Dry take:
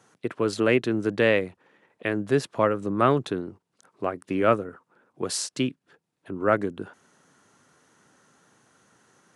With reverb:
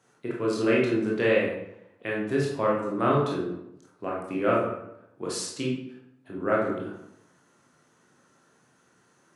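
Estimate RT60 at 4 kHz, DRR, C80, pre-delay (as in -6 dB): 0.55 s, -4.0 dB, 6.0 dB, 18 ms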